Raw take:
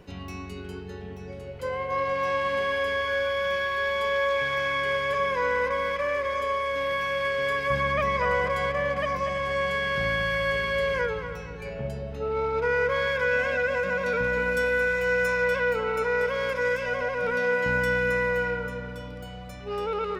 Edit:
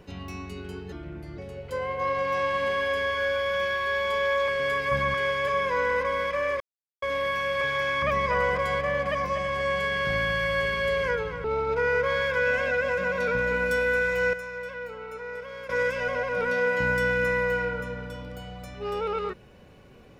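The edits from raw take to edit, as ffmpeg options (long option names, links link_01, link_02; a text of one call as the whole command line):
ffmpeg -i in.wav -filter_complex "[0:a]asplit=12[link_01][link_02][link_03][link_04][link_05][link_06][link_07][link_08][link_09][link_10][link_11][link_12];[link_01]atrim=end=0.924[link_13];[link_02]atrim=start=0.92:end=1.29,asetpts=PTS-STARTPTS,asetrate=35280,aresample=44100,atrim=end_sample=20396,asetpts=PTS-STARTPTS[link_14];[link_03]atrim=start=1.286:end=4.392[link_15];[link_04]atrim=start=7.268:end=7.932[link_16];[link_05]atrim=start=4.798:end=6.26,asetpts=PTS-STARTPTS,afade=type=out:start_time=1.458:duration=0.004:curve=hsin[link_17];[link_06]atrim=start=6.26:end=6.68,asetpts=PTS-STARTPTS,volume=0[link_18];[link_07]atrim=start=6.68:end=7.272,asetpts=PTS-STARTPTS,afade=type=in:duration=0.004:curve=hsin[link_19];[link_08]atrim=start=4.388:end=4.802[link_20];[link_09]atrim=start=7.928:end=11.352[link_21];[link_10]atrim=start=12.298:end=15.192[link_22];[link_11]atrim=start=15.188:end=16.552,asetpts=PTS-STARTPTS,volume=-11.5dB[link_23];[link_12]atrim=start=16.548[link_24];[link_13][link_14]acrossfade=duration=0.004:curve1=hsin:curve2=hsin[link_25];[link_25][link_15]acrossfade=duration=0.004:curve1=hsin:curve2=hsin[link_26];[link_26][link_16]acrossfade=duration=0.004:curve1=hsin:curve2=hsin[link_27];[link_17][link_18][link_19]concat=n=3:v=0:a=1[link_28];[link_27][link_28]acrossfade=duration=0.004:curve1=hsin:curve2=hsin[link_29];[link_29][link_20]acrossfade=duration=0.004:curve1=hsin:curve2=hsin[link_30];[link_30][link_21]acrossfade=duration=0.004:curve1=hsin:curve2=hsin[link_31];[link_31][link_22]acrossfade=duration=0.004:curve1=hsin:curve2=hsin[link_32];[link_32][link_23]acrossfade=duration=0.004:curve1=hsin:curve2=hsin[link_33];[link_33][link_24]acrossfade=duration=0.004:curve1=hsin:curve2=hsin" out.wav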